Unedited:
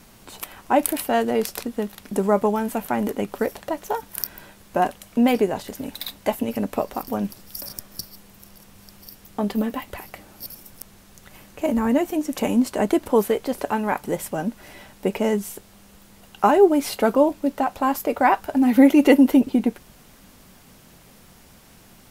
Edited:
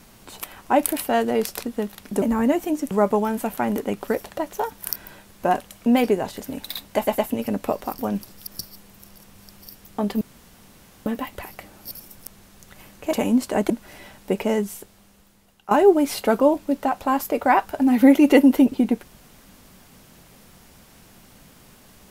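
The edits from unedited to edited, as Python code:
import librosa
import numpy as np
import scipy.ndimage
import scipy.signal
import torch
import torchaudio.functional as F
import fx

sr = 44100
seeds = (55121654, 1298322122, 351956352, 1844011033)

y = fx.edit(x, sr, fx.stutter(start_s=6.27, slice_s=0.11, count=3),
    fx.cut(start_s=7.56, length_s=0.31),
    fx.insert_room_tone(at_s=9.61, length_s=0.85),
    fx.move(start_s=11.68, length_s=0.69, to_s=2.22),
    fx.cut(start_s=12.94, length_s=1.51),
    fx.fade_out_to(start_s=15.2, length_s=1.26, floor_db=-15.5), tone=tone)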